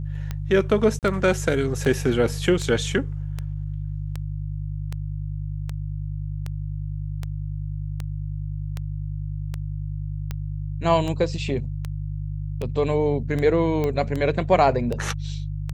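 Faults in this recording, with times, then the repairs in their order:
mains hum 50 Hz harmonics 3 −29 dBFS
scratch tick 78 rpm −16 dBFS
0:00.99–0:01.03: drop-out 38 ms
0:13.84: click −14 dBFS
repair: click removal
hum removal 50 Hz, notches 3
repair the gap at 0:00.99, 38 ms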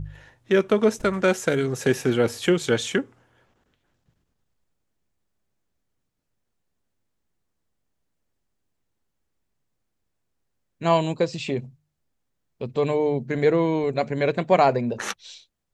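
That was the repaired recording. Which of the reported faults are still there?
none of them is left

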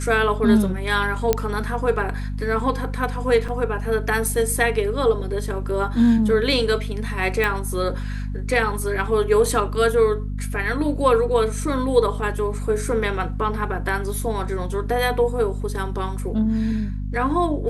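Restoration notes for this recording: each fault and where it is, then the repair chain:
mains hum 50 Hz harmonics 5 −27 dBFS
0:01.33: click −4 dBFS
0:03.48: drop-out 5 ms
0:07.44: click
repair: click removal
hum removal 50 Hz, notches 5
repair the gap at 0:03.48, 5 ms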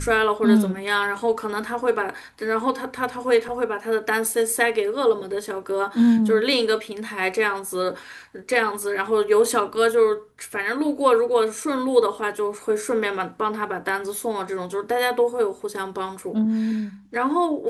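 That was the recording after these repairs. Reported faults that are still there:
0:07.44: click

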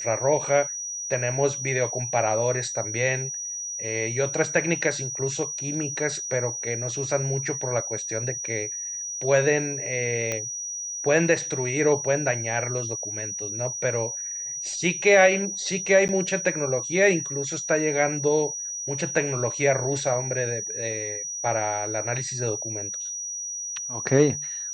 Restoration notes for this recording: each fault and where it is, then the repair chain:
whistle 5,800 Hz −30 dBFS
0:10.32: click −12 dBFS
0:16.08–0:16.09: drop-out 9.5 ms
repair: click removal
notch filter 5,800 Hz, Q 30
repair the gap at 0:16.08, 9.5 ms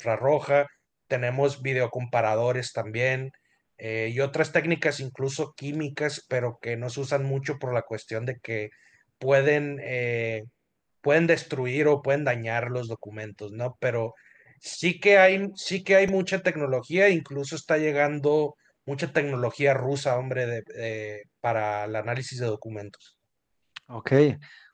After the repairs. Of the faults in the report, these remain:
none of them is left

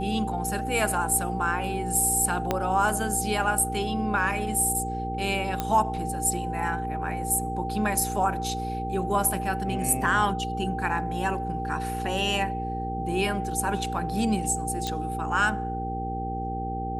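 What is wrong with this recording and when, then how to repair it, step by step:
mains hum 60 Hz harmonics 8 −33 dBFS
whistle 780 Hz −31 dBFS
0:02.51: click −10 dBFS
0:05.60: click −12 dBFS
0:14.87: click −15 dBFS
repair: click removal
hum removal 60 Hz, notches 8
notch filter 780 Hz, Q 30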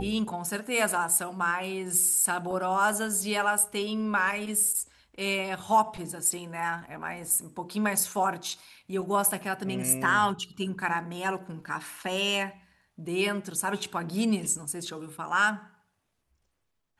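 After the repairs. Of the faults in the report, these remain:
0:02.51: click

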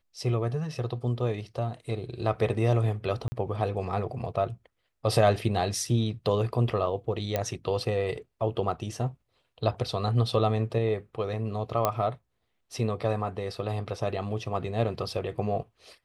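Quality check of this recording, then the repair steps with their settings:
0:03.28–0:03.32: drop-out 40 ms
0:07.36: click −13 dBFS
0:11.85: click −10 dBFS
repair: click removal
repair the gap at 0:03.28, 40 ms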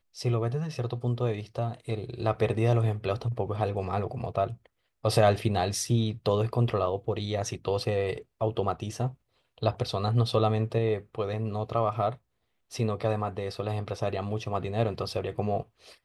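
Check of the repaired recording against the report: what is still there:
0:11.85: click

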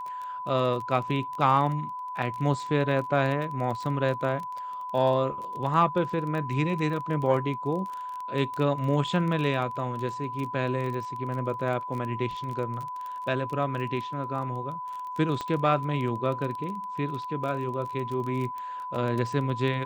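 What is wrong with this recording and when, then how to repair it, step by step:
surface crackle 20 per second −32 dBFS
whistle 1,000 Hz −33 dBFS
0:15.41: click −19 dBFS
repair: click removal
notch filter 1,000 Hz, Q 30

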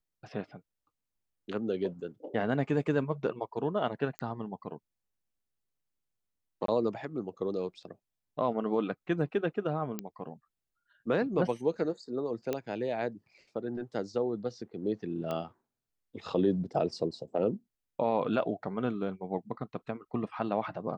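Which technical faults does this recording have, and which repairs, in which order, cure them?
0:04.19: click −20 dBFS
0:06.66–0:06.68: drop-out 23 ms
0:09.99: click −19 dBFS
0:12.53: click −18 dBFS
0:15.31: click −22 dBFS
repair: click removal
repair the gap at 0:06.66, 23 ms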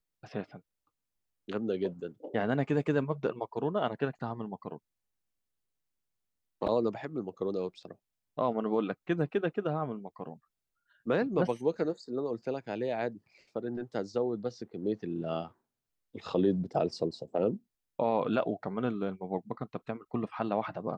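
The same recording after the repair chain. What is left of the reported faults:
none of them is left

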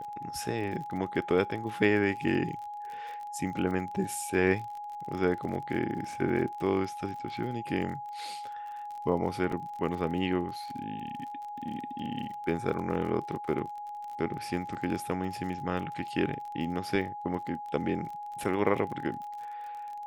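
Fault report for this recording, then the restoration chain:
surface crackle 38 per second −38 dBFS
whistle 830 Hz −37 dBFS
0:09.52: drop-out 4.3 ms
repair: click removal
notch filter 830 Hz, Q 30
repair the gap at 0:09.52, 4.3 ms

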